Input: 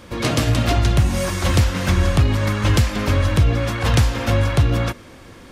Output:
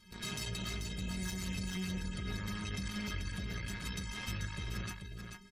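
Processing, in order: passive tone stack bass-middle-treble 6-0-2; metallic resonator 190 Hz, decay 0.3 s, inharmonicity 0.03; in parallel at +2 dB: negative-ratio compressor -53 dBFS, ratio -0.5; on the sum: added harmonics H 3 -22 dB, 8 -20 dB, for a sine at -33.5 dBFS; spectral gate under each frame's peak -30 dB strong; on a send: echo 0.437 s -6 dB; on the sum: gain +7.5 dB

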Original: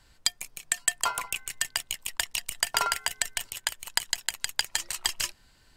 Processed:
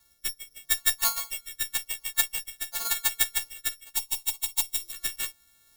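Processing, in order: frequency quantiser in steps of 4 st; 2.38–2.85 compressor 3:1, threshold -19 dBFS, peak gain reduction 6 dB; added harmonics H 6 -23 dB, 7 -24 dB, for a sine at -1.5 dBFS; rotary speaker horn 0.85 Hz; careless resampling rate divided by 8×, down filtered, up zero stuff; 3.96–4.93 fixed phaser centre 320 Hz, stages 8; gain -3.5 dB

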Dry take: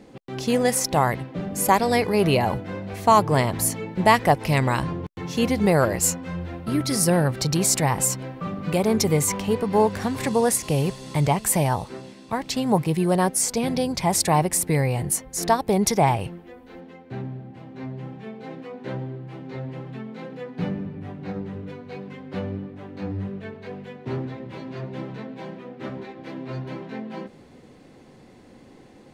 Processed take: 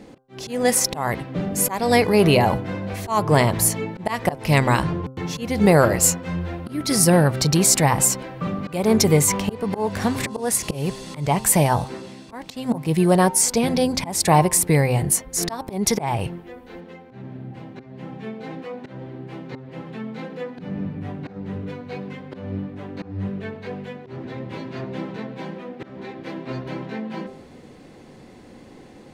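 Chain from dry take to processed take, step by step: auto swell 0.247 s; de-hum 130.9 Hz, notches 12; gain +4.5 dB

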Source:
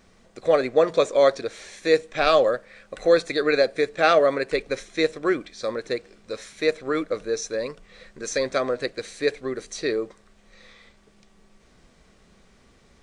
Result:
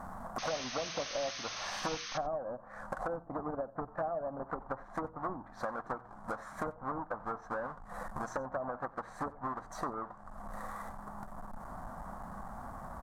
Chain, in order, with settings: half-waves squared off; de-hum 58.99 Hz, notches 2; treble ducked by the level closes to 510 Hz, closed at -15 dBFS; EQ curve 250 Hz 0 dB, 420 Hz -12 dB, 720 Hz +12 dB, 1100 Hz +12 dB, 1700 Hz +1 dB, 2500 Hz -22 dB, 5500 Hz -14 dB, 8300 Hz -6 dB; compressor 5:1, threshold -43 dBFS, peak gain reduction 28 dB; painted sound noise, 0.38–2.18, 1000–6500 Hz -48 dBFS; echo 91 ms -22 dB; gain +5 dB

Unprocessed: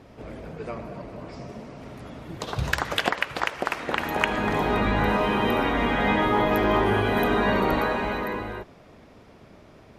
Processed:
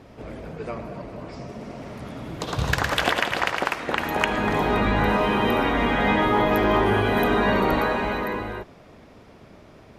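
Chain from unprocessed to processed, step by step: soft clip -7.5 dBFS, distortion -27 dB; 1.5–3.7 bouncing-ball echo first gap 0.11 s, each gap 0.8×, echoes 5; gain +2 dB

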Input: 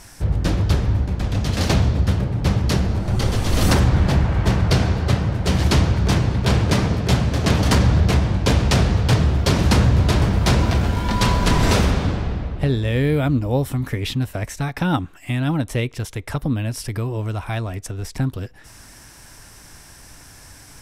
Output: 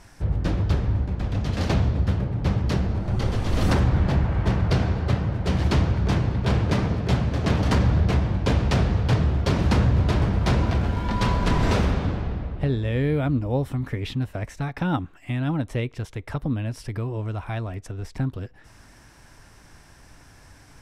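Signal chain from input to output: LPF 2600 Hz 6 dB/oct; gain -4 dB

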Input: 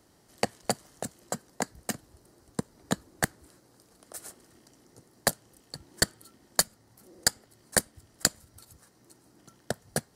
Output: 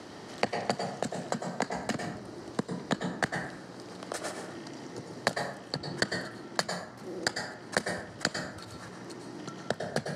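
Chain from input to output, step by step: in parallel at -1.5 dB: negative-ratio compressor -39 dBFS, ratio -1; on the sum: BPF 140–4300 Hz; plate-style reverb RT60 0.65 s, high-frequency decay 0.55×, pre-delay 90 ms, DRR 4 dB; three-band squash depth 40%

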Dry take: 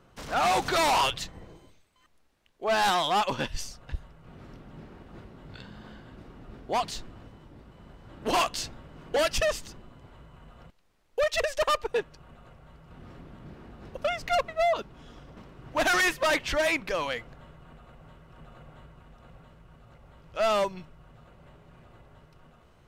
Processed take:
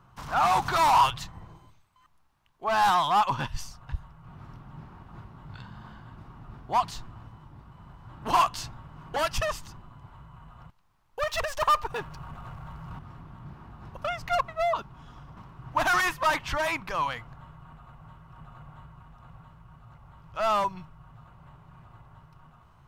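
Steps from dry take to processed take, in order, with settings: 11.19–12.99 power-law curve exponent 0.7; ten-band EQ 125 Hz +7 dB, 250 Hz -4 dB, 500 Hz -11 dB, 1000 Hz +10 dB, 2000 Hz -4 dB, 4000 Hz -3 dB, 8000 Hz -4 dB

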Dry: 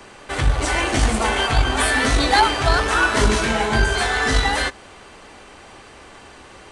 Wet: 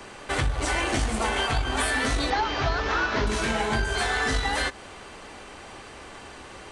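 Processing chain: 2.3–3.27 CVSD 32 kbps; compressor, threshold -22 dBFS, peak gain reduction 10.5 dB

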